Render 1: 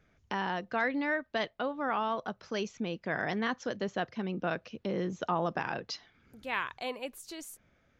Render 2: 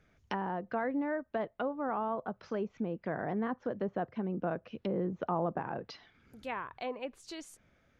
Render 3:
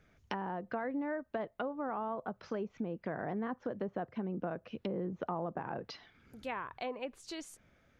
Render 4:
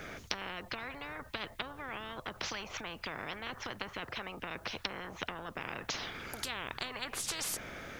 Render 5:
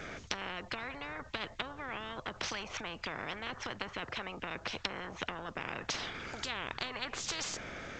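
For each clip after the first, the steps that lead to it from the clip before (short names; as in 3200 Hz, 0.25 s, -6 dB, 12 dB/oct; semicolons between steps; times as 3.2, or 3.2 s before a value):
treble ducked by the level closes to 960 Hz, closed at -31 dBFS
compressor 2.5:1, threshold -36 dBFS, peak gain reduction 7 dB; gain +1 dB
spectral compressor 10:1; gain +8 dB
gain +1 dB; G.722 64 kbps 16000 Hz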